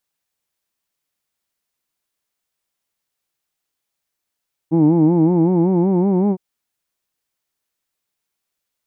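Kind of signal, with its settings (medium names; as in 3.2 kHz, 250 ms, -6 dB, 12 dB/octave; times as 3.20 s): formant-synthesis vowel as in who'd, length 1.66 s, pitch 156 Hz, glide +4 st, vibrato depth 1.15 st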